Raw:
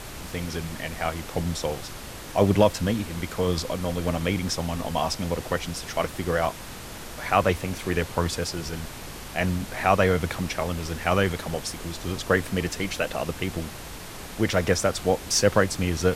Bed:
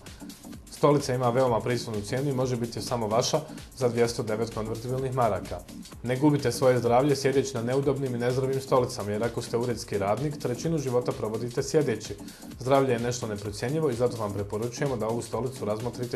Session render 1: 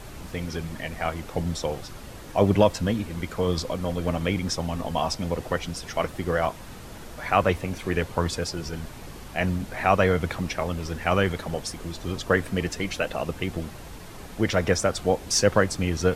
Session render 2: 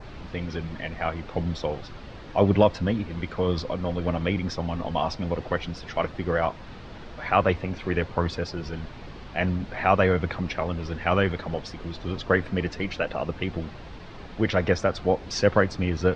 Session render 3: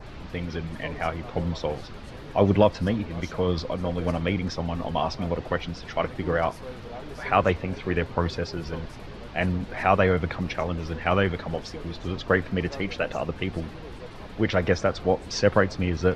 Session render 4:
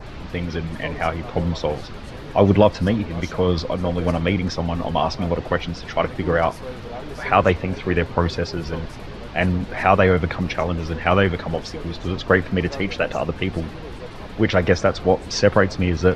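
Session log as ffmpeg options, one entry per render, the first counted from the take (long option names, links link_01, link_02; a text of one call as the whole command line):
ffmpeg -i in.wav -af "afftdn=noise_reduction=7:noise_floor=-39" out.wav
ffmpeg -i in.wav -af "lowpass=frequency=4500:width=0.5412,lowpass=frequency=4500:width=1.3066,adynamicequalizer=threshold=0.00501:dfrequency=3200:dqfactor=2.2:tfrequency=3200:tqfactor=2.2:attack=5:release=100:ratio=0.375:range=2:mode=cutabove:tftype=bell" out.wav
ffmpeg -i in.wav -i bed.wav -filter_complex "[1:a]volume=-18.5dB[link_01];[0:a][link_01]amix=inputs=2:normalize=0" out.wav
ffmpeg -i in.wav -af "volume=5.5dB,alimiter=limit=-1dB:level=0:latency=1" out.wav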